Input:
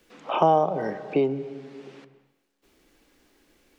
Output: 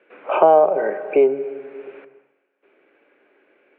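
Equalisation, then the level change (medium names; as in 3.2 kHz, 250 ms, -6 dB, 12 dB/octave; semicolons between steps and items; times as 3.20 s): distance through air 490 m; cabinet simulation 390–3200 Hz, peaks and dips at 400 Hz +8 dB, 590 Hz +8 dB, 1.5 kHz +8 dB, 2.4 kHz +10 dB; +4.5 dB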